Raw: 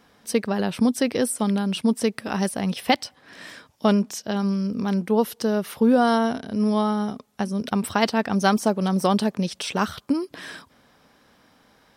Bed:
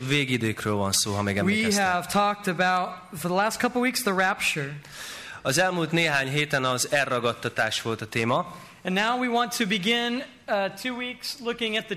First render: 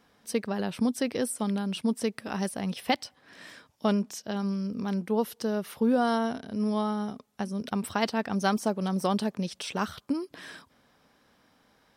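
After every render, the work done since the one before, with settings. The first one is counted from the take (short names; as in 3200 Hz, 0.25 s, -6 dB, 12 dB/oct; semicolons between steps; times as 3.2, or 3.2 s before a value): gain -6.5 dB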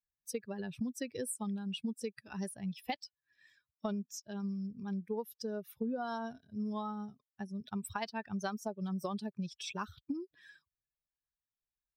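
per-bin expansion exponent 2; compressor 6:1, threshold -34 dBFS, peak gain reduction 11.5 dB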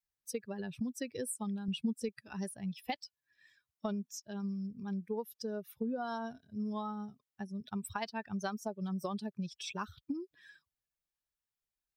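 1.68–2.09 low shelf 180 Hz +9.5 dB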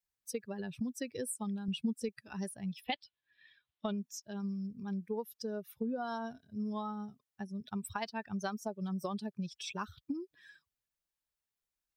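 2.84–3.98 resonant high shelf 4900 Hz -12.5 dB, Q 3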